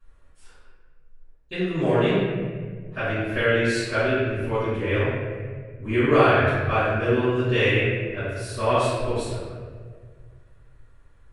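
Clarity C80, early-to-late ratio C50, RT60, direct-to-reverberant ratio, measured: −0.5 dB, −3.5 dB, 1.7 s, −17.5 dB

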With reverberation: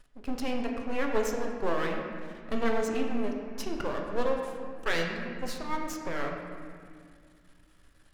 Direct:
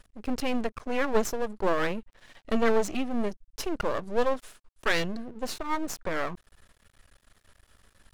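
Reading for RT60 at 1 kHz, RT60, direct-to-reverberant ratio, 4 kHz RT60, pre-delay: 2.0 s, 2.1 s, 1.0 dB, 1.4 s, 7 ms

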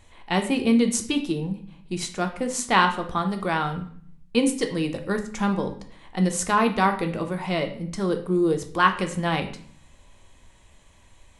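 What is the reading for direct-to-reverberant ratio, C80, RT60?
5.0 dB, 14.5 dB, 0.55 s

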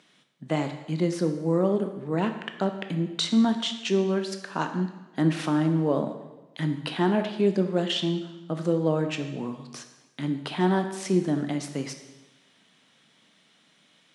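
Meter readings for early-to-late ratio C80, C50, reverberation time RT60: 10.5 dB, 8.5 dB, 1.1 s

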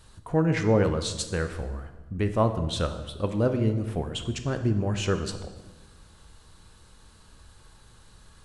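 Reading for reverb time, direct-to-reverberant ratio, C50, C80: 1.2 s, 7.5 dB, 9.5 dB, 11.5 dB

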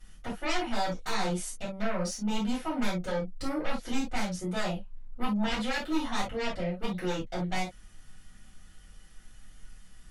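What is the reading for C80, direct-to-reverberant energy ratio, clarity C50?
47.0 dB, −8.0 dB, 8.0 dB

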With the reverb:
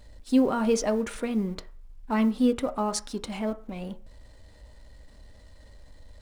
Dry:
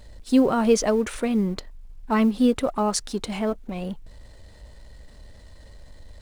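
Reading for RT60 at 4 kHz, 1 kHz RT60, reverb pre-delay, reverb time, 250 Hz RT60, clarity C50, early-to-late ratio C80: 0.40 s, 0.45 s, 3 ms, 0.45 s, 0.40 s, 17.5 dB, 21.5 dB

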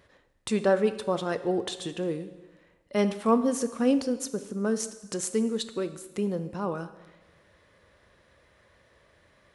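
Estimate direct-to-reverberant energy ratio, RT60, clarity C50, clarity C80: 11.0 dB, 1.2 s, 12.5 dB, 14.5 dB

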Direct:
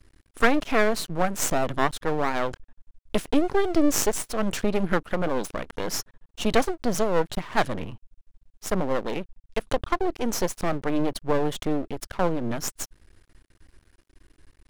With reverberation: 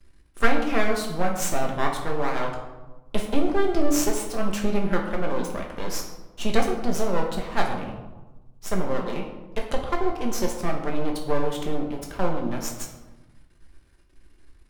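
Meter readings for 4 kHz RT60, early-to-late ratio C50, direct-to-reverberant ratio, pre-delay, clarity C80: 0.65 s, 5.5 dB, 0.0 dB, 5 ms, 8.0 dB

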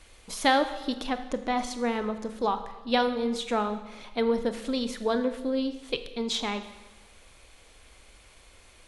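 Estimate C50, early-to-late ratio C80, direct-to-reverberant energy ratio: 11.0 dB, 12.5 dB, 9.0 dB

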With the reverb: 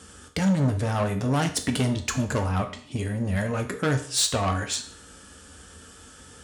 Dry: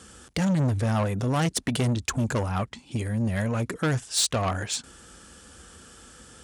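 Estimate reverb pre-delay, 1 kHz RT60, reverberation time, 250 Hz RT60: 5 ms, 0.50 s, 0.50 s, 0.50 s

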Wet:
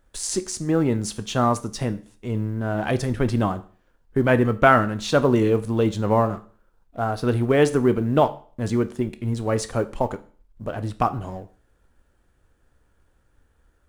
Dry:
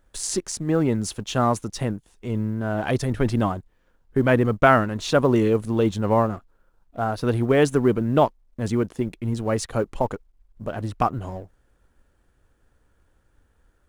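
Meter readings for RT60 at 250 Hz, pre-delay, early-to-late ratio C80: 0.45 s, 14 ms, 21.0 dB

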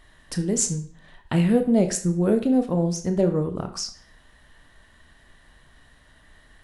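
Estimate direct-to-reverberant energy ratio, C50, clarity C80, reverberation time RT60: 6.5 dB, 12.0 dB, 15.5 dB, 0.45 s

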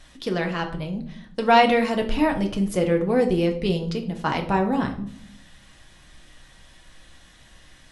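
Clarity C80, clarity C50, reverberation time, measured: 14.5 dB, 11.0 dB, 0.60 s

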